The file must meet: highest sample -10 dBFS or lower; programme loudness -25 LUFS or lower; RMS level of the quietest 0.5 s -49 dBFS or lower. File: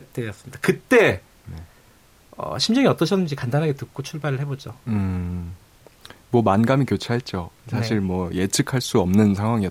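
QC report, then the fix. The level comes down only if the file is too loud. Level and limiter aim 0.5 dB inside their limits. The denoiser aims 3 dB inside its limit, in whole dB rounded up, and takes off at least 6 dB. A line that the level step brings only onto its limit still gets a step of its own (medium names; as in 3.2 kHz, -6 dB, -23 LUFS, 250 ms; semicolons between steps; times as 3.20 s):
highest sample -5.0 dBFS: fail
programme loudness -21.5 LUFS: fail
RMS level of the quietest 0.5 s -53 dBFS: pass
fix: trim -4 dB; peak limiter -10.5 dBFS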